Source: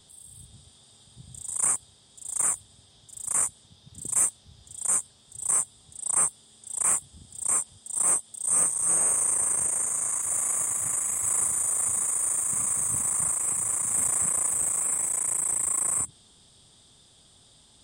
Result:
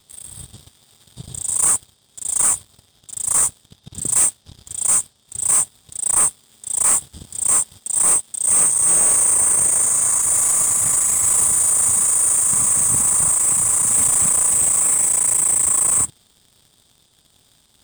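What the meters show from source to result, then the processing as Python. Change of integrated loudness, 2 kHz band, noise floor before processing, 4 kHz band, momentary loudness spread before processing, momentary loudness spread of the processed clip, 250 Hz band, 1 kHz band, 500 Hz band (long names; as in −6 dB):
+9.5 dB, +8.5 dB, −58 dBFS, can't be measured, 11 LU, 10 LU, +9.5 dB, +8.0 dB, +8.0 dB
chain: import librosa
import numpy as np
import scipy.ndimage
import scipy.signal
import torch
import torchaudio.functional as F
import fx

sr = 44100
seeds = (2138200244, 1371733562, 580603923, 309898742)

y = fx.leveller(x, sr, passes=3)
y = F.gain(torch.from_numpy(y), 2.0).numpy()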